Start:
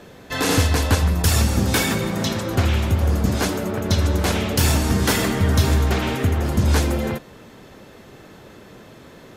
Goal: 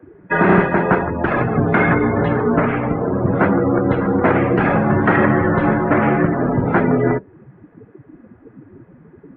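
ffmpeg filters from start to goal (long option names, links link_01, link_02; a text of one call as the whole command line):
ffmpeg -i in.wav -filter_complex "[0:a]afftdn=noise_reduction=23:noise_floor=-31,asplit=2[link_01][link_02];[link_02]acompressor=threshold=-31dB:ratio=10,volume=0dB[link_03];[link_01][link_03]amix=inputs=2:normalize=0,highpass=frequency=250:width_type=q:width=0.5412,highpass=frequency=250:width_type=q:width=1.307,lowpass=frequency=2100:width_type=q:width=0.5176,lowpass=frequency=2100:width_type=q:width=0.7071,lowpass=frequency=2100:width_type=q:width=1.932,afreqshift=-95,alimiter=level_in=11dB:limit=-1dB:release=50:level=0:latency=1,volume=-2dB" out.wav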